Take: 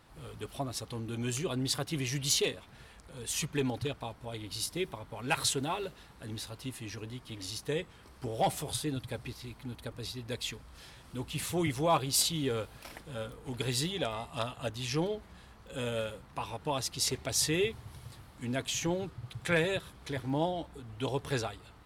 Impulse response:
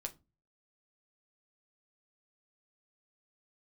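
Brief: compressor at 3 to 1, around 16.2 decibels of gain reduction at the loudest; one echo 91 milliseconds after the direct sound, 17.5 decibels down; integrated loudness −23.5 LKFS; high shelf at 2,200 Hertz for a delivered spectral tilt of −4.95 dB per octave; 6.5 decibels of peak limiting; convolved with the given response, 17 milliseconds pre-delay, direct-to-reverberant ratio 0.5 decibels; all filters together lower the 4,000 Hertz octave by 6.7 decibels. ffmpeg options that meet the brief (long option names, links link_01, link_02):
-filter_complex "[0:a]highshelf=frequency=2200:gain=-3.5,equalizer=frequency=4000:width_type=o:gain=-5,acompressor=threshold=-47dB:ratio=3,alimiter=level_in=13dB:limit=-24dB:level=0:latency=1,volume=-13dB,aecho=1:1:91:0.133,asplit=2[link_01][link_02];[1:a]atrim=start_sample=2205,adelay=17[link_03];[link_02][link_03]afir=irnorm=-1:irlink=0,volume=1.5dB[link_04];[link_01][link_04]amix=inputs=2:normalize=0,volume=21.5dB"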